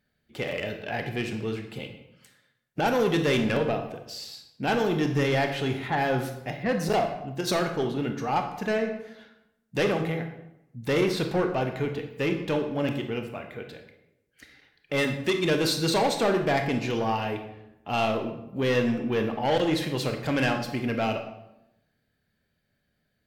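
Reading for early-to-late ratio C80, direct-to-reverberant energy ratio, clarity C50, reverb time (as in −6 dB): 10.5 dB, 5.0 dB, 7.5 dB, 0.85 s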